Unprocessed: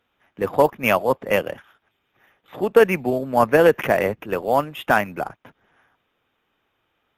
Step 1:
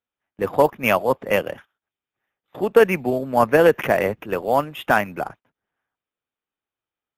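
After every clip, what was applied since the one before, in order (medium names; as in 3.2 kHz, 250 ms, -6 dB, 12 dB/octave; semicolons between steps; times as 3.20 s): gate -40 dBFS, range -21 dB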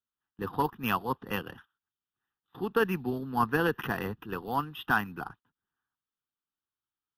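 static phaser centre 2.2 kHz, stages 6; trim -5 dB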